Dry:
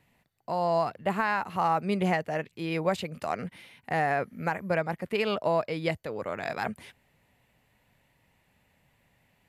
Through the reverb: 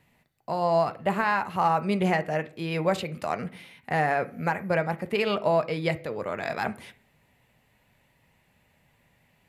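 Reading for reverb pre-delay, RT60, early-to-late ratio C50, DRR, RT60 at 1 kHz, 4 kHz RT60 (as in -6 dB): 3 ms, 0.50 s, 18.0 dB, 9.0 dB, 0.45 s, 0.55 s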